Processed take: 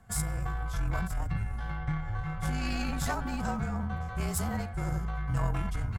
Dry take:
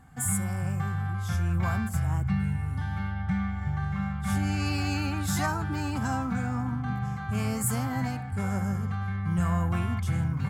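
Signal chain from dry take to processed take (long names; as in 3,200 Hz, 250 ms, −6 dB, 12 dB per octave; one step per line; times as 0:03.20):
pitch-shifted copies added −12 semitones −17 dB, −7 semitones −11 dB, −5 semitones −13 dB
frequency shifter −41 Hz
phase-vocoder stretch with locked phases 0.57×
harmonic generator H 2 −13 dB, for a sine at −15 dBFS
level −2.5 dB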